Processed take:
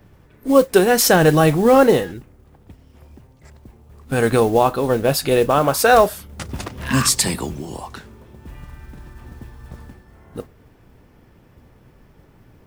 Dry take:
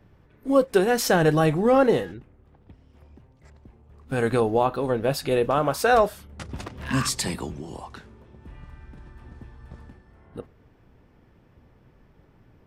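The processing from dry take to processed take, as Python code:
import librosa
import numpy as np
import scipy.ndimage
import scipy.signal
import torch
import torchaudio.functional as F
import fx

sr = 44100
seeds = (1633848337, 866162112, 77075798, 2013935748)

y = fx.high_shelf(x, sr, hz=7100.0, db=9.0)
y = fx.mod_noise(y, sr, seeds[0], snr_db=25)
y = y * 10.0 ** (6.0 / 20.0)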